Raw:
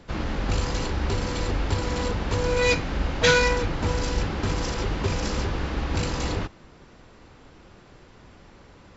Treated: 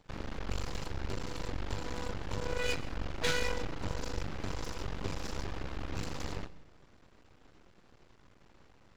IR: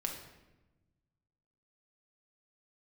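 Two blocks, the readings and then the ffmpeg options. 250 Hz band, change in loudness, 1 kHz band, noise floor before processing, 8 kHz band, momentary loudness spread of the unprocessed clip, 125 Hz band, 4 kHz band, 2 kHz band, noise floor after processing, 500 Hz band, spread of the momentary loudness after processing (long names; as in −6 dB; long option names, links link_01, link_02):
−12.5 dB, −13.0 dB, −12.5 dB, −51 dBFS, can't be measured, 8 LU, −13.0 dB, −11.5 dB, −13.0 dB, −62 dBFS, −13.5 dB, 8 LU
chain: -filter_complex "[0:a]aeval=exprs='max(val(0),0)':channel_layout=same,asplit=2[link_01][link_02];[1:a]atrim=start_sample=2205,adelay=128[link_03];[link_02][link_03]afir=irnorm=-1:irlink=0,volume=-19.5dB[link_04];[link_01][link_04]amix=inputs=2:normalize=0,volume=-8.5dB"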